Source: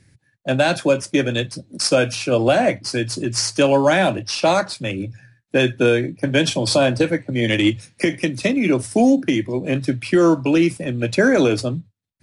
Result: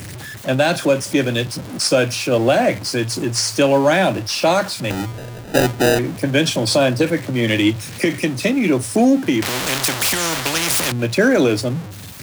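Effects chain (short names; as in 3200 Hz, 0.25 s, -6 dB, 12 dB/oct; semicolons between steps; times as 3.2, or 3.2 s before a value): zero-crossing step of -26.5 dBFS; HPF 55 Hz; 4.9–5.99 sample-rate reducer 1100 Hz, jitter 0%; 9.42–10.92 spectral compressor 4:1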